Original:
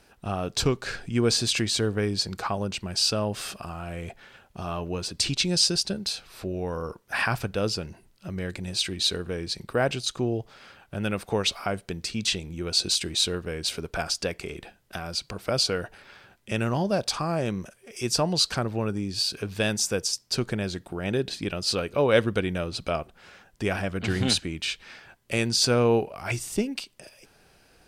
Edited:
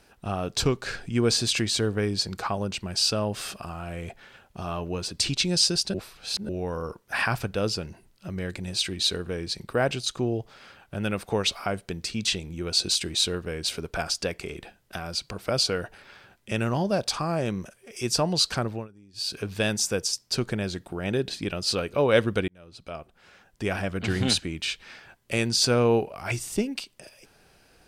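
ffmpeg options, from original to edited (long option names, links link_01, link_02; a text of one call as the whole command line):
ffmpeg -i in.wav -filter_complex "[0:a]asplit=6[link_01][link_02][link_03][link_04][link_05][link_06];[link_01]atrim=end=5.942[link_07];[link_02]atrim=start=5.938:end=6.492,asetpts=PTS-STARTPTS,areverse[link_08];[link_03]atrim=start=6.488:end=18.88,asetpts=PTS-STARTPTS,afade=type=out:start_time=12.122:duration=0.27:curve=qsin:silence=0.0707946[link_09];[link_04]atrim=start=18.88:end=19.13,asetpts=PTS-STARTPTS,volume=-23dB[link_10];[link_05]atrim=start=19.13:end=22.48,asetpts=PTS-STARTPTS,afade=type=in:duration=0.27:curve=qsin:silence=0.0707946,afade=type=out:start_time=3.346:duration=0.004:curve=hsin[link_11];[link_06]atrim=start=22.48,asetpts=PTS-STARTPTS,afade=type=in:duration=1.37[link_12];[link_07][link_08]acrossfade=duration=0.004:curve1=hsin:curve2=hsin[link_13];[link_09][link_10][link_11][link_12]concat=n=4:v=0:a=1[link_14];[link_13][link_14]acrossfade=duration=0.004:curve1=hsin:curve2=hsin" out.wav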